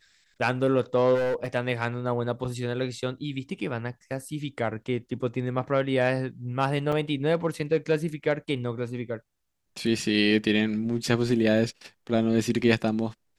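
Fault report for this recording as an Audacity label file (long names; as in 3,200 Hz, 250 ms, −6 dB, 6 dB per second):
1.140000	1.560000	clipping −23 dBFS
6.920000	6.930000	drop-out 5.3 ms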